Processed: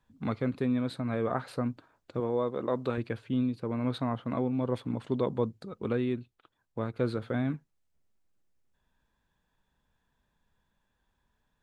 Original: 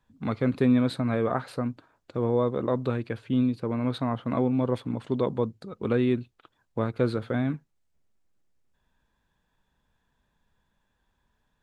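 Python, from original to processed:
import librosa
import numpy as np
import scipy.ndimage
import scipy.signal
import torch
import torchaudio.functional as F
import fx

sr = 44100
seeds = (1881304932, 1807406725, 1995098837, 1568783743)

y = fx.low_shelf(x, sr, hz=150.0, db=-12.0, at=(2.2, 2.98))
y = fx.rider(y, sr, range_db=4, speed_s=0.5)
y = y * 10.0 ** (-4.0 / 20.0)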